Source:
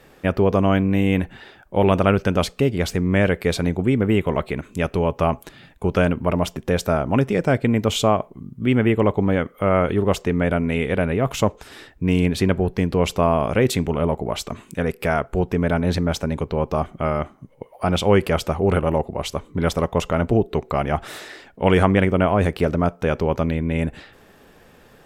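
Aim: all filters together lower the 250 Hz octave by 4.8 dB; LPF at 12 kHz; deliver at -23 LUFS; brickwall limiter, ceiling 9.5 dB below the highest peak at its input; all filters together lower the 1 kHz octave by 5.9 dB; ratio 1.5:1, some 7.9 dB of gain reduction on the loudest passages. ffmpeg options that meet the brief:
-af "lowpass=12000,equalizer=f=250:t=o:g=-6.5,equalizer=f=1000:t=o:g=-8,acompressor=threshold=0.0126:ratio=1.5,volume=3.98,alimiter=limit=0.251:level=0:latency=1"

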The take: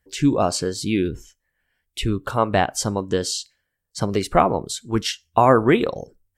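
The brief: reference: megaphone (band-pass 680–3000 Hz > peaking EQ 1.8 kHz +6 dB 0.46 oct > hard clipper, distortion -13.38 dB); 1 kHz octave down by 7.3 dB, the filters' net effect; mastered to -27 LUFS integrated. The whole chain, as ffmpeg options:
-af "highpass=680,lowpass=3000,equalizer=f=1000:t=o:g=-8.5,equalizer=f=1800:t=o:w=0.46:g=6,asoftclip=type=hard:threshold=0.15,volume=1.5"

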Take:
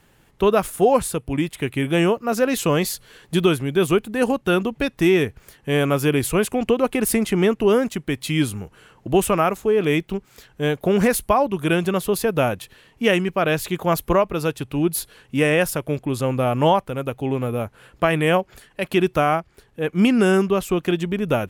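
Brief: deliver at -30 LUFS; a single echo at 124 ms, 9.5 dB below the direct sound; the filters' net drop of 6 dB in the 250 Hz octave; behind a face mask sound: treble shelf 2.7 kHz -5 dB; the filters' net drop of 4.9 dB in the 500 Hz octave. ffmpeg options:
-af "equalizer=f=250:t=o:g=-7.5,equalizer=f=500:t=o:g=-3.5,highshelf=f=2700:g=-5,aecho=1:1:124:0.335,volume=0.531"

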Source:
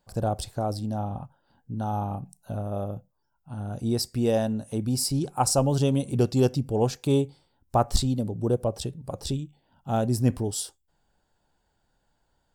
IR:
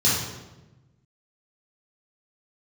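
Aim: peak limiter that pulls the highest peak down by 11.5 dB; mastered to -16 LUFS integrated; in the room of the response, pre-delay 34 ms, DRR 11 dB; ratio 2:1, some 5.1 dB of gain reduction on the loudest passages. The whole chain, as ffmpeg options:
-filter_complex "[0:a]acompressor=threshold=0.0562:ratio=2,alimiter=level_in=1.19:limit=0.0631:level=0:latency=1,volume=0.841,asplit=2[s0][s1];[1:a]atrim=start_sample=2205,adelay=34[s2];[s1][s2]afir=irnorm=-1:irlink=0,volume=0.0473[s3];[s0][s3]amix=inputs=2:normalize=0,volume=7.5"

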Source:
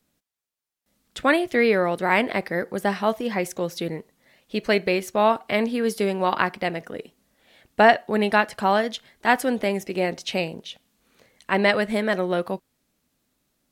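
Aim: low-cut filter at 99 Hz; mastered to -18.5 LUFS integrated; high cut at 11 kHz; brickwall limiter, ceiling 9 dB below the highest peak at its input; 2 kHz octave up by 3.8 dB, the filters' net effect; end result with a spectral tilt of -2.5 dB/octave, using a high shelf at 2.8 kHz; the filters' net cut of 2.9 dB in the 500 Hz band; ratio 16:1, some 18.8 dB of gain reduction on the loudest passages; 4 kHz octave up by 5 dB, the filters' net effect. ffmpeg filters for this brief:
-af "highpass=99,lowpass=11000,equalizer=f=500:t=o:g=-4,equalizer=f=2000:t=o:g=4.5,highshelf=f=2800:g=-4.5,equalizer=f=4000:t=o:g=8.5,acompressor=threshold=0.0355:ratio=16,volume=7.5,alimiter=limit=0.562:level=0:latency=1"

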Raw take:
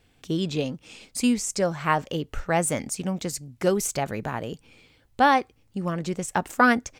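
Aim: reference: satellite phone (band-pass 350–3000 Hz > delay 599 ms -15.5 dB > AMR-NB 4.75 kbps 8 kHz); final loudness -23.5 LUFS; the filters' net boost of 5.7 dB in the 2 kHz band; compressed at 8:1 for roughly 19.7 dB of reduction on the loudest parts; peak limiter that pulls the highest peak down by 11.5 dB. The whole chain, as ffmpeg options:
-af "equalizer=f=2000:t=o:g=8.5,acompressor=threshold=0.0251:ratio=8,alimiter=level_in=1.41:limit=0.0631:level=0:latency=1,volume=0.708,highpass=350,lowpass=3000,aecho=1:1:599:0.168,volume=10.6" -ar 8000 -c:a libopencore_amrnb -b:a 4750

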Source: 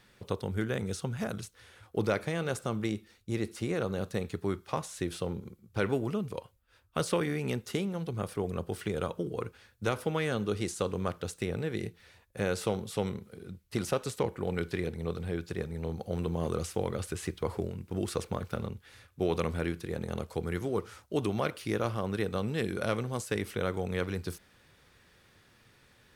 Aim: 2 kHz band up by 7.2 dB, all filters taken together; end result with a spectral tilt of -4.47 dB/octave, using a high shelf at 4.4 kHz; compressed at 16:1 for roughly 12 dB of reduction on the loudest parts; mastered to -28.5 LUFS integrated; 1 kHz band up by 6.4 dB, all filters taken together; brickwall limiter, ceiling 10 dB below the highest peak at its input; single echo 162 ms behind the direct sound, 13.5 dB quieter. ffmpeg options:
-af "equalizer=f=1000:t=o:g=6,equalizer=f=2000:t=o:g=6,highshelf=f=4400:g=6.5,acompressor=threshold=0.02:ratio=16,alimiter=level_in=1.5:limit=0.0631:level=0:latency=1,volume=0.668,aecho=1:1:162:0.211,volume=4.47"

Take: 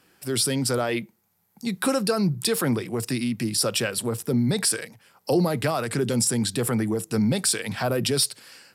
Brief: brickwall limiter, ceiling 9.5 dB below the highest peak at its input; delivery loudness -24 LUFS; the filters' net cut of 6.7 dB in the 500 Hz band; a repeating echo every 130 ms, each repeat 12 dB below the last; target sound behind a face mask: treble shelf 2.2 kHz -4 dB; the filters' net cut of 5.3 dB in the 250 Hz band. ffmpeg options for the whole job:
-af "equalizer=f=250:t=o:g=-5,equalizer=f=500:t=o:g=-6.5,alimiter=limit=0.106:level=0:latency=1,highshelf=f=2200:g=-4,aecho=1:1:130|260|390:0.251|0.0628|0.0157,volume=2.11"

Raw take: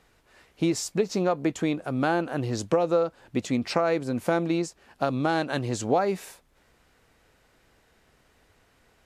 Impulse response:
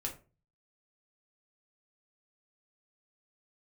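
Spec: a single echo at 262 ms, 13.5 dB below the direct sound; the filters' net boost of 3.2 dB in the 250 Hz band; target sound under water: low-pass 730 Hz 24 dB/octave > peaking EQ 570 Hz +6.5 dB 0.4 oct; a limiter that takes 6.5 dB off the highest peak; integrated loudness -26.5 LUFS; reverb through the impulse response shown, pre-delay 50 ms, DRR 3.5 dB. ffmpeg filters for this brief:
-filter_complex "[0:a]equalizer=f=250:t=o:g=4,alimiter=limit=0.188:level=0:latency=1,aecho=1:1:262:0.211,asplit=2[s0][s1];[1:a]atrim=start_sample=2205,adelay=50[s2];[s1][s2]afir=irnorm=-1:irlink=0,volume=0.631[s3];[s0][s3]amix=inputs=2:normalize=0,lowpass=f=730:w=0.5412,lowpass=f=730:w=1.3066,equalizer=f=570:t=o:w=0.4:g=6.5,volume=0.708"

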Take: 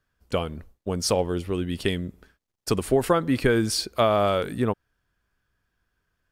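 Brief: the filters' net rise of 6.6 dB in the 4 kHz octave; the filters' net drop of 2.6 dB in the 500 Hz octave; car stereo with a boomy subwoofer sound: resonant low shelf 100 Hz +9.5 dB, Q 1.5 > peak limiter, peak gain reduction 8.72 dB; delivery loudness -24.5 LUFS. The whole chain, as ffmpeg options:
-af "lowshelf=f=100:t=q:w=1.5:g=9.5,equalizer=f=500:t=o:g=-3,equalizer=f=4000:t=o:g=8.5,volume=1.41,alimiter=limit=0.237:level=0:latency=1"

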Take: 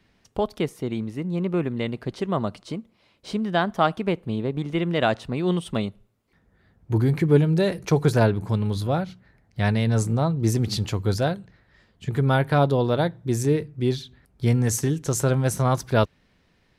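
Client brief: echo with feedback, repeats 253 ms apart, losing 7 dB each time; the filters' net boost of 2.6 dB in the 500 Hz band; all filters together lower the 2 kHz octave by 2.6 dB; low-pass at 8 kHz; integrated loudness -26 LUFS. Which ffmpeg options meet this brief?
-af "lowpass=8000,equalizer=f=500:t=o:g=3.5,equalizer=f=2000:t=o:g=-4,aecho=1:1:253|506|759|1012|1265:0.447|0.201|0.0905|0.0407|0.0183,volume=0.668"

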